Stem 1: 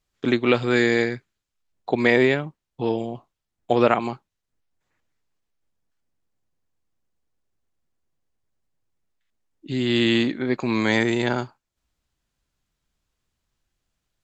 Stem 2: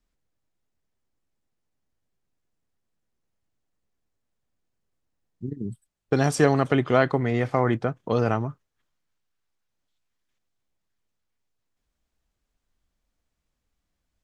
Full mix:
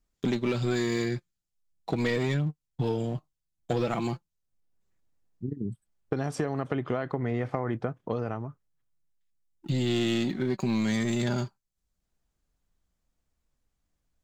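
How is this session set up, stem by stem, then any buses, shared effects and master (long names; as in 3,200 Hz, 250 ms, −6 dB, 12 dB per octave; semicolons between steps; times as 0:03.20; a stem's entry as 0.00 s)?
−8.0 dB, 0.00 s, no send, bass and treble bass +13 dB, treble +12 dB; leveller curve on the samples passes 2; flanger 0.18 Hz, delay 4.8 ms, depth 2 ms, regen +46%
−1.0 dB, 0.00 s, no send, high-shelf EQ 2,800 Hz −9 dB; downward compressor, threshold −21 dBFS, peak gain reduction 8 dB; automatic ducking −19 dB, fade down 1.75 s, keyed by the first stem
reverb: not used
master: downward compressor, threshold −24 dBFS, peak gain reduction 7 dB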